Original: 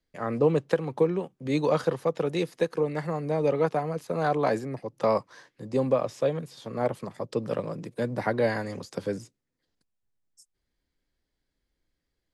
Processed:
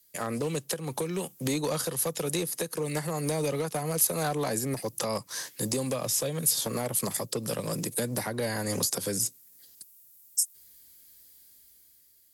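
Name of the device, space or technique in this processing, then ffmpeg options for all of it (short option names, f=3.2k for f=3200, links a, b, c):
FM broadcast chain: -filter_complex "[0:a]highpass=52,dynaudnorm=f=220:g=9:m=7.5dB,acrossover=split=230|1600[a][b][c];[a]acompressor=threshold=-32dB:ratio=4[d];[b]acompressor=threshold=-28dB:ratio=4[e];[c]acompressor=threshold=-47dB:ratio=4[f];[d][e][f]amix=inputs=3:normalize=0,aemphasis=mode=production:type=75fm,alimiter=limit=-22.5dB:level=0:latency=1:release=271,asoftclip=type=hard:threshold=-25.5dB,lowpass=f=15k:w=0.5412,lowpass=f=15k:w=1.3066,aemphasis=mode=production:type=75fm,volume=2.5dB"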